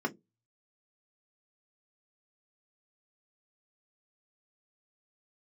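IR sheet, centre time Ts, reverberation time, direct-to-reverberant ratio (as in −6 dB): 5 ms, 0.20 s, 0.5 dB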